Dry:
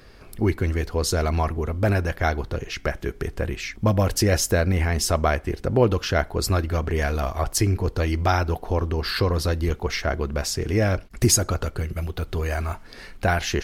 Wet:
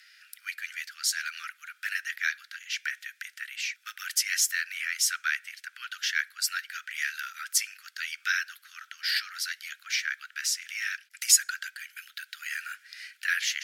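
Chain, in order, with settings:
frequency shifter +190 Hz
Butterworth high-pass 1,400 Hz 96 dB per octave

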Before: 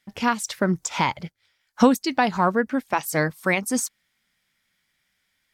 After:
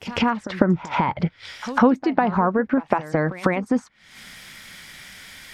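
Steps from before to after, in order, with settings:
camcorder AGC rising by 73 dB per second
echo ahead of the sound 150 ms −16 dB
treble cut that deepens with the level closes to 1,500 Hz, closed at −18 dBFS

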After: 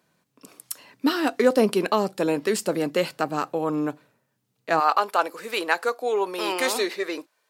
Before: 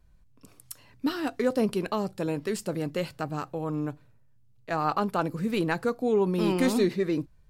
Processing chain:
Bessel high-pass filter 280 Hz, order 4, from 0:04.79 670 Hz
level +8.5 dB

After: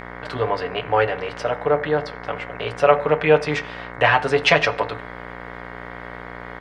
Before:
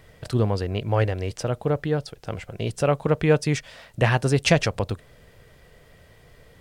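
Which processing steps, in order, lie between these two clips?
reversed playback
upward compression, threshold −41 dBFS
reversed playback
three-way crossover with the lows and the highs turned down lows −20 dB, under 470 Hz, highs −22 dB, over 3,800 Hz
comb filter 6.9 ms, depth 76%
hum with harmonics 60 Hz, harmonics 37, −43 dBFS −1 dB per octave
on a send: convolution reverb RT60 0.45 s, pre-delay 3 ms, DRR 9 dB
on the sum: level +6.5 dB

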